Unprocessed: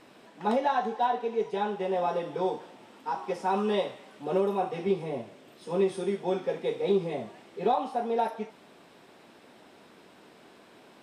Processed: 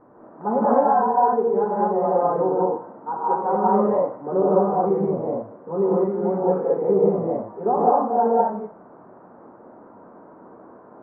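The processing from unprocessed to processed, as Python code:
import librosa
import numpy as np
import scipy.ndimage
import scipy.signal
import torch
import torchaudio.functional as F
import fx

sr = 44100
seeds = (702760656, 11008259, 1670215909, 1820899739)

y = scipy.signal.sosfilt(scipy.signal.butter(6, 1300.0, 'lowpass', fs=sr, output='sos'), x)
y = fx.rev_gated(y, sr, seeds[0], gate_ms=250, shape='rising', drr_db=-6.0)
y = y * librosa.db_to_amplitude(3.0)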